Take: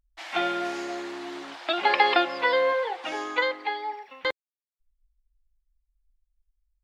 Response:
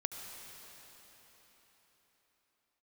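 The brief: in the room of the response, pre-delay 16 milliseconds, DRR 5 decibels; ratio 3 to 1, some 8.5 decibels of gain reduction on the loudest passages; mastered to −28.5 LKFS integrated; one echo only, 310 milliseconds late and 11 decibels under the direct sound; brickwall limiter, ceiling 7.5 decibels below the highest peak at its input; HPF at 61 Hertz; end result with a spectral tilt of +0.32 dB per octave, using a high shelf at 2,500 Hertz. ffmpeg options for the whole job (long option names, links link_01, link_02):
-filter_complex "[0:a]highpass=61,highshelf=frequency=2500:gain=-4,acompressor=threshold=-29dB:ratio=3,alimiter=limit=-23.5dB:level=0:latency=1,aecho=1:1:310:0.282,asplit=2[link_01][link_02];[1:a]atrim=start_sample=2205,adelay=16[link_03];[link_02][link_03]afir=irnorm=-1:irlink=0,volume=-6dB[link_04];[link_01][link_04]amix=inputs=2:normalize=0,volume=5.5dB"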